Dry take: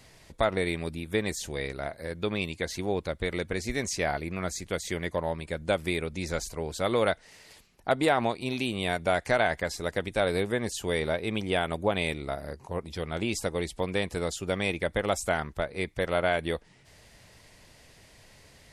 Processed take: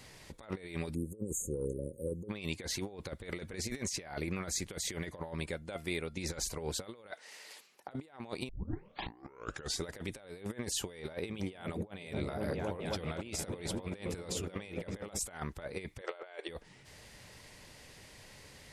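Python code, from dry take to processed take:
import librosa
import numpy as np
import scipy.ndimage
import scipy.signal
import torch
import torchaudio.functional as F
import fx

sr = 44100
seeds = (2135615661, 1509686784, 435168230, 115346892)

y = fx.spec_erase(x, sr, start_s=0.95, length_s=1.34, low_hz=560.0, high_hz=6300.0)
y = fx.comb_fb(y, sr, f0_hz=690.0, decay_s=0.16, harmonics='all', damping=0.0, mix_pct=60, at=(5.51, 6.17))
y = fx.highpass(y, sr, hz=440.0, slope=12, at=(7.11, 7.88))
y = fx.echo_opening(y, sr, ms=260, hz=200, octaves=1, feedback_pct=70, wet_db=-6, at=(11.02, 15.19))
y = fx.brickwall_bandpass(y, sr, low_hz=340.0, high_hz=9100.0, at=(16.01, 16.49))
y = fx.edit(y, sr, fx.tape_start(start_s=8.49, length_s=1.36), tone=tone)
y = fx.low_shelf(y, sr, hz=79.0, db=-4.5)
y = fx.notch(y, sr, hz=670.0, q=12.0)
y = fx.over_compress(y, sr, threshold_db=-35.0, ratio=-0.5)
y = y * librosa.db_to_amplitude(-4.0)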